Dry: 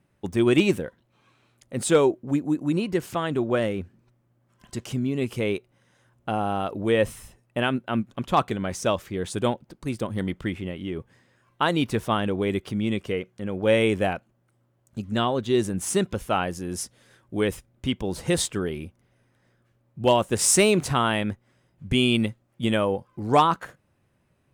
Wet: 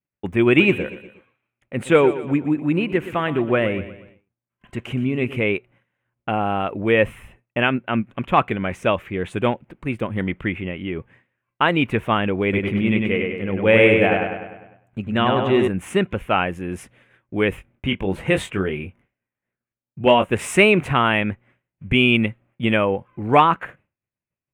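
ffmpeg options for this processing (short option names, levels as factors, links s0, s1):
-filter_complex "[0:a]asplit=3[s0][s1][s2];[s0]afade=t=out:st=0.59:d=0.02[s3];[s1]aecho=1:1:120|240|360|480:0.211|0.093|0.0409|0.018,afade=t=in:st=0.59:d=0.02,afade=t=out:st=5.44:d=0.02[s4];[s2]afade=t=in:st=5.44:d=0.02[s5];[s3][s4][s5]amix=inputs=3:normalize=0,asettb=1/sr,asplit=3[s6][s7][s8];[s6]atrim=end=12.434[s9];[s7]atrim=start=12.43:end=15.68,asetpts=PTS-STARTPTS,afade=t=in:d=0.004:c=qsin,afade=t=out:st=3.246:d=0.004:c=qsin,asplit=2[s10][s11];[s11]adelay=100,lowpass=f=4700:p=1,volume=0.708,asplit=2[s12][s13];[s13]adelay=100,lowpass=f=4700:p=1,volume=0.55,asplit=2[s14][s15];[s15]adelay=100,lowpass=f=4700:p=1,volume=0.55,asplit=2[s16][s17];[s17]adelay=100,lowpass=f=4700:p=1,volume=0.55,asplit=2[s18][s19];[s19]adelay=100,lowpass=f=4700:p=1,volume=0.55,asplit=2[s20][s21];[s21]adelay=100,lowpass=f=4700:p=1,volume=0.55,asplit=2[s22][s23];[s23]adelay=100,lowpass=f=4700:p=1,volume=0.55,asplit=2[s24][s25];[s25]adelay=100,lowpass=f=4700:p=1,volume=0.55[s26];[s10][s12][s14][s16][s18][s20][s22][s24][s26]amix=inputs=9:normalize=0,atrim=end_sample=143325[s27];[s8]atrim=start=15.676[s28];[s9][s27]acrossfade=d=0.004:c1=hsin:c2=qsin[s29];[s29][s28]acrossfade=d=0.004:c1=qsin:c2=hsin,asettb=1/sr,asplit=3[s30][s31][s32];[s30]atrim=end=17.504[s33];[s31]atrim=start=17.5:end=20.33,asetpts=PTS-STARTPTS,afade=t=in:d=0.004:c=qsin,afade=t=out:st=2.826:d=0.004:c=qsin,asplit=2[s34][s35];[s35]adelay=21,volume=0.473[s36];[s34][s36]amix=inputs=2:normalize=0,atrim=end_sample=124803[s37];[s32]atrim=start=20.326[s38];[s33][s37]acrossfade=d=0.004:c1=hsin:c2=qsin[s39];[s39][s38]acrossfade=d=0.004:c1=qsin:c2=hsin,agate=range=0.0224:threshold=0.00316:ratio=3:detection=peak,highshelf=f=3500:t=q:w=3:g=-12.5,volume=1.5"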